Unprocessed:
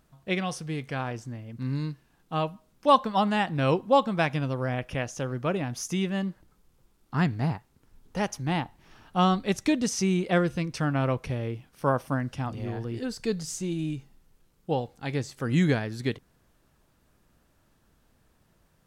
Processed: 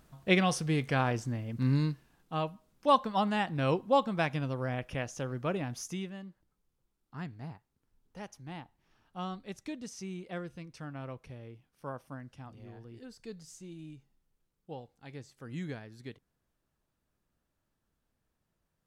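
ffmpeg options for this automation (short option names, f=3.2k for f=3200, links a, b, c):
-af "volume=3dB,afade=t=out:st=1.68:d=0.65:silence=0.398107,afade=t=out:st=5.71:d=0.47:silence=0.281838"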